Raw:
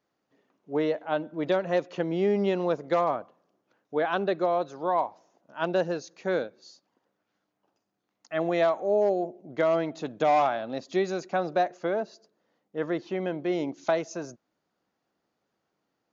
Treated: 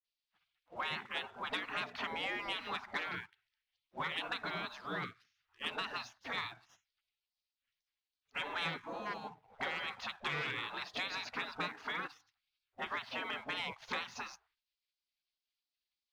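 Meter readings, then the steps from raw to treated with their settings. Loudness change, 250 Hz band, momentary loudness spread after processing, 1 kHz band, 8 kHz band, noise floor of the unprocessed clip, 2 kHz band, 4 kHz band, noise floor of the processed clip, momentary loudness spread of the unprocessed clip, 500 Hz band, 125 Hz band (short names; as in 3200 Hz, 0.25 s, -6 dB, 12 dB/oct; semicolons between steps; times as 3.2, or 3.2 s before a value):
-11.5 dB, -19.0 dB, 8 LU, -12.0 dB, n/a, -80 dBFS, -1.5 dB, +3.0 dB, under -85 dBFS, 10 LU, -23.0 dB, -14.0 dB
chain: LPF 4400 Hz 24 dB/oct; high shelf 3200 Hz -7.5 dB; notches 60/120/180/240/300/360/420/480/540/600 Hz; dispersion highs, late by 45 ms, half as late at 390 Hz; spectral gate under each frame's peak -25 dB weak; compressor 5:1, threshold -47 dBFS, peak gain reduction 9 dB; sample leveller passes 1; gain +9 dB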